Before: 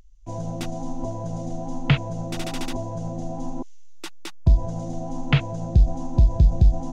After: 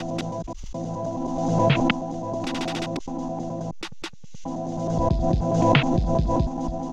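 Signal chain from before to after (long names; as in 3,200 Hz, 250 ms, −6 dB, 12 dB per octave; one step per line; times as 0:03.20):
slices reordered back to front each 106 ms, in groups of 7
three-way crossover with the lows and the highs turned down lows −15 dB, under 150 Hz, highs −15 dB, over 6,600 Hz
background raised ahead of every attack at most 29 dB per second
level +3 dB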